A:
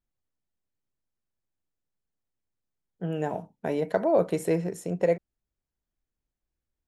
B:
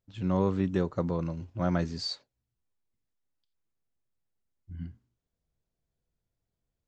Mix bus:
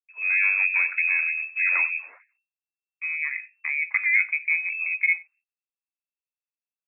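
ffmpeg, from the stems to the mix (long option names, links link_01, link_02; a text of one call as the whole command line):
ffmpeg -i stem1.wav -i stem2.wav -filter_complex "[0:a]lowpass=frequency=1400:width=0.5412,lowpass=frequency=1400:width=1.3066,volume=1dB,asplit=2[link_01][link_02];[link_02]volume=-23.5dB[link_03];[1:a]asoftclip=type=tanh:threshold=-24dB,dynaudnorm=framelen=100:gausssize=5:maxgain=8dB,volume=0.5dB,asplit=2[link_04][link_05];[link_05]volume=-14dB[link_06];[link_03][link_06]amix=inputs=2:normalize=0,aecho=0:1:93:1[link_07];[link_01][link_04][link_07]amix=inputs=3:normalize=0,agate=range=-33dB:threshold=-54dB:ratio=16:detection=peak,lowpass=frequency=2300:width_type=q:width=0.5098,lowpass=frequency=2300:width_type=q:width=0.6013,lowpass=frequency=2300:width_type=q:width=0.9,lowpass=frequency=2300:width_type=q:width=2.563,afreqshift=-2700,afftfilt=real='re*gte(b*sr/1024,250*pow(1700/250,0.5+0.5*sin(2*PI*3.2*pts/sr)))':imag='im*gte(b*sr/1024,250*pow(1700/250,0.5+0.5*sin(2*PI*3.2*pts/sr)))':win_size=1024:overlap=0.75" out.wav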